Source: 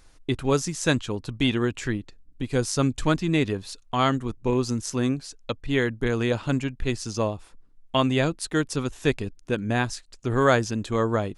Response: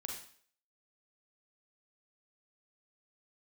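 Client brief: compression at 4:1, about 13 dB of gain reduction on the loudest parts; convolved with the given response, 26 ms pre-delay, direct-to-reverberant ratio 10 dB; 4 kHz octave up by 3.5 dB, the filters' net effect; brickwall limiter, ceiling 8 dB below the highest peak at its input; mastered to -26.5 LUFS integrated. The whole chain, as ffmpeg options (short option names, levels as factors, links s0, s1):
-filter_complex "[0:a]equalizer=f=4000:t=o:g=4.5,acompressor=threshold=0.0282:ratio=4,alimiter=limit=0.0668:level=0:latency=1,asplit=2[s0][s1];[1:a]atrim=start_sample=2205,adelay=26[s2];[s1][s2]afir=irnorm=-1:irlink=0,volume=0.376[s3];[s0][s3]amix=inputs=2:normalize=0,volume=2.82"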